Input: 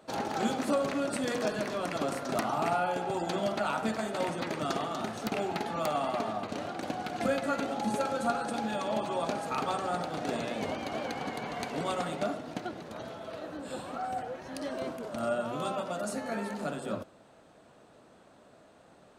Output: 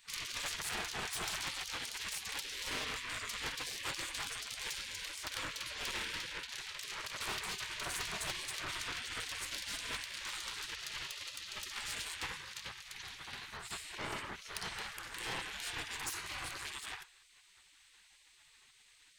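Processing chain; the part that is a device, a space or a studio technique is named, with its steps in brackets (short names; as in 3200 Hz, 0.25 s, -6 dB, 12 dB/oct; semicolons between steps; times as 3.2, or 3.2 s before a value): 12.34–13.85 HPF 200 Hz 24 dB/oct; rockabilly slapback (tube stage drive 37 dB, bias 0.65; tape echo 95 ms, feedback 31%, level -17.5 dB, low-pass 1600 Hz); spectral gate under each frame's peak -20 dB weak; gain +10.5 dB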